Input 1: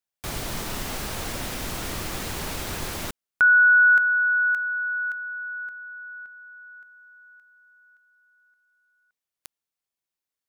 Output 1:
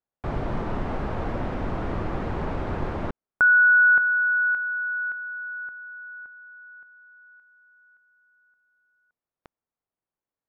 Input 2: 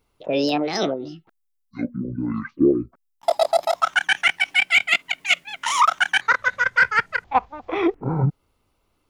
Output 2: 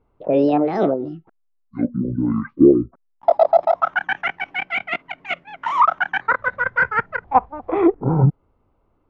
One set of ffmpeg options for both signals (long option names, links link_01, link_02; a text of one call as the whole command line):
ffmpeg -i in.wav -af "lowpass=1100,volume=5.5dB" out.wav